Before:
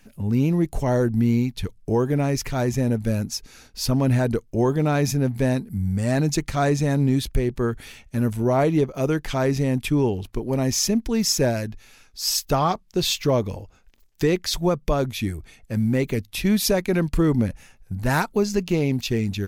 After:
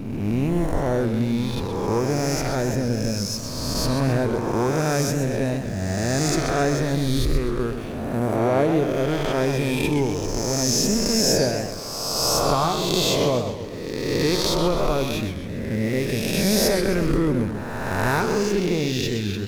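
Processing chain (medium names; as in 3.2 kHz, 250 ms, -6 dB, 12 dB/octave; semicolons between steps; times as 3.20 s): reverse spectral sustain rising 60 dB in 2.04 s; hysteresis with a dead band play -33.5 dBFS; modulated delay 130 ms, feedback 50%, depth 193 cents, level -8.5 dB; trim -4 dB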